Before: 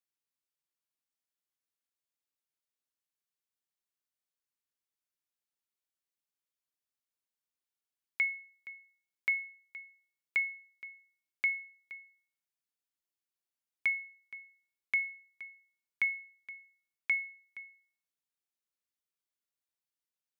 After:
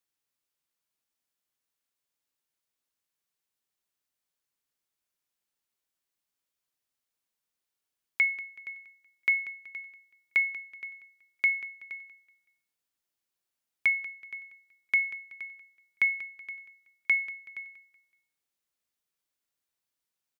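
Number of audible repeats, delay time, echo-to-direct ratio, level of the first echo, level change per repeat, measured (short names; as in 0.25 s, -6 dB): 3, 0.188 s, -14.5 dB, -15.0 dB, -8.5 dB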